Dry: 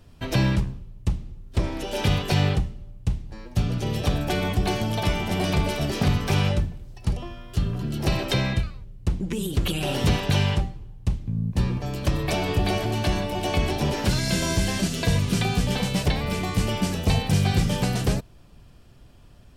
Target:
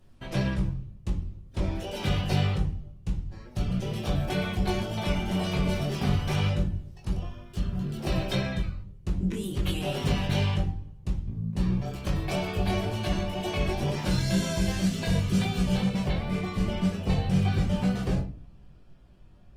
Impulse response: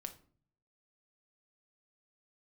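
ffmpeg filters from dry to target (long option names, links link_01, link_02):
-filter_complex "[0:a]asetnsamples=nb_out_samples=441:pad=0,asendcmd='15.82 highshelf g -11.5',highshelf=frequency=4400:gain=-2.5[link_01];[1:a]atrim=start_sample=2205[link_02];[link_01][link_02]afir=irnorm=-1:irlink=0,flanger=delay=19.5:depth=2.3:speed=2,volume=1.5dB" -ar 48000 -c:a libopus -b:a 24k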